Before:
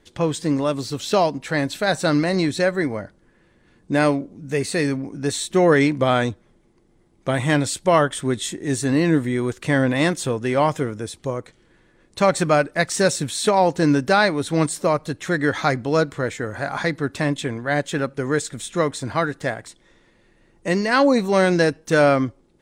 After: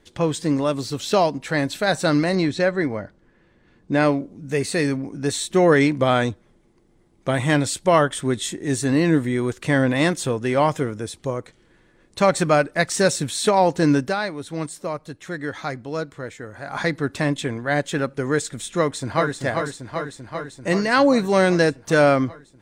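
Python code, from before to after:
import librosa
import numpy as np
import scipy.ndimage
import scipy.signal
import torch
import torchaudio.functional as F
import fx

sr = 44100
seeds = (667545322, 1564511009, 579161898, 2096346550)

y = fx.air_absorb(x, sr, metres=72.0, at=(2.35, 4.17))
y = fx.echo_throw(y, sr, start_s=18.78, length_s=0.62, ms=390, feedback_pct=75, wet_db=-5.5)
y = fx.edit(y, sr, fx.fade_down_up(start_s=14.0, length_s=2.8, db=-8.5, fade_s=0.15), tone=tone)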